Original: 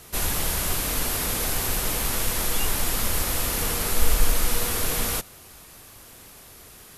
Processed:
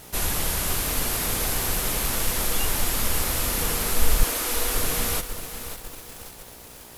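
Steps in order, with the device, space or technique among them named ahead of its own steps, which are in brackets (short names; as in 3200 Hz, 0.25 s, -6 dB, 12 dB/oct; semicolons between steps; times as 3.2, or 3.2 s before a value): 4.23–4.76 steep high-pass 250 Hz 72 dB/oct; video cassette with head-switching buzz (buzz 60 Hz, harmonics 16, -52 dBFS -1 dB/oct; white noise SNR 29 dB); lo-fi delay 0.548 s, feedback 55%, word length 6-bit, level -10 dB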